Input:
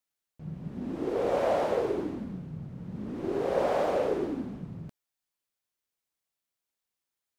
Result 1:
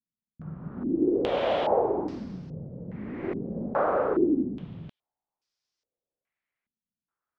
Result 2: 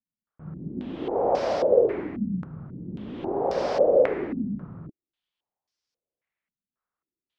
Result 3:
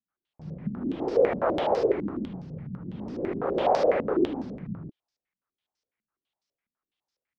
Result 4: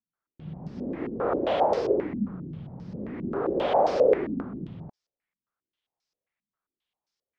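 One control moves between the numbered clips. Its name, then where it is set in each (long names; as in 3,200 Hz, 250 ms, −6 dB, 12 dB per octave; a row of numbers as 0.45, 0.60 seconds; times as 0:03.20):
low-pass on a step sequencer, speed: 2.4, 3.7, 12, 7.5 Hertz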